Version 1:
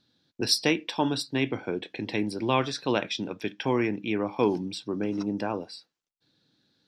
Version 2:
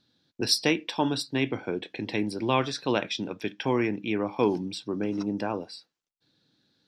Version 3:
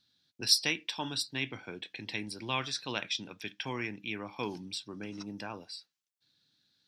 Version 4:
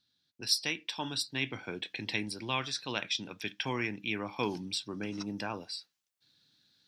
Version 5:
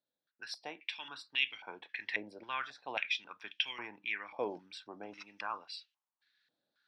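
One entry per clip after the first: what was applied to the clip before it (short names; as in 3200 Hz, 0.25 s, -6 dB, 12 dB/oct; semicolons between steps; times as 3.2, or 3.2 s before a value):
nothing audible
passive tone stack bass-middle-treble 5-5-5; gain +6 dB
vocal rider within 4 dB 0.5 s
stepped band-pass 3.7 Hz 590–2900 Hz; gain +6.5 dB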